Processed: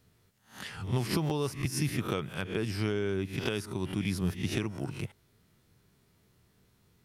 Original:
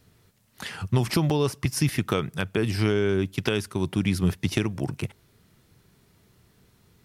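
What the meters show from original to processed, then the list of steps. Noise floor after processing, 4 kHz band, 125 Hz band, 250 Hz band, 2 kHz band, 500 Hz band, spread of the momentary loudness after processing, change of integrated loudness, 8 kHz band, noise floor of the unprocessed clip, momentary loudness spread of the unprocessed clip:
−68 dBFS, −6.0 dB, −7.0 dB, −7.0 dB, −6.0 dB, −7.0 dB, 8 LU, −7.0 dB, −5.5 dB, −62 dBFS, 10 LU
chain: peak hold with a rise ahead of every peak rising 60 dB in 0.37 s
level −8 dB

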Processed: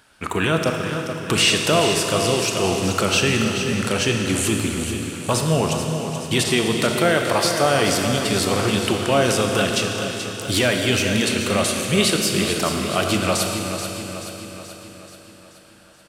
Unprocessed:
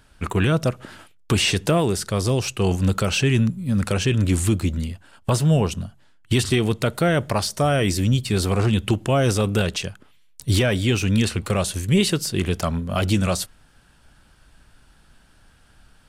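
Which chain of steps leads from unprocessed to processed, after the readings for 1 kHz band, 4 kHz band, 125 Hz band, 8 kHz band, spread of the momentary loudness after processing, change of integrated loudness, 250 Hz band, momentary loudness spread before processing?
+5.0 dB, +6.0 dB, −4.5 dB, +6.0 dB, 9 LU, +1.5 dB, +0.5 dB, 7 LU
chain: high-pass filter 400 Hz 6 dB per octave
on a send: repeating echo 431 ms, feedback 56%, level −9.5 dB
on the sum: four-comb reverb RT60 3.4 s, combs from 25 ms, DRR 3 dB
level +3.5 dB

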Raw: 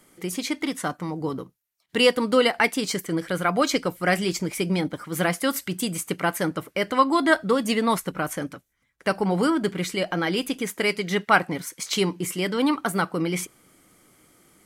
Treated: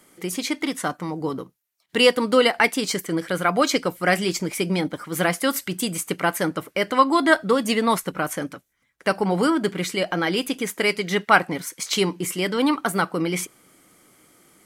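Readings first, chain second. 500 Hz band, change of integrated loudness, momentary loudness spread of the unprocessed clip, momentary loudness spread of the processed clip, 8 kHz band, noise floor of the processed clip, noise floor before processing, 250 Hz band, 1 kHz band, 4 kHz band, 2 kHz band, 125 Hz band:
+2.0 dB, +2.0 dB, 10 LU, 10 LU, +2.5 dB, −68 dBFS, −70 dBFS, +1.0 dB, +2.5 dB, +2.5 dB, +2.5 dB, 0.0 dB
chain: low-shelf EQ 110 Hz −8.5 dB
level +2.5 dB

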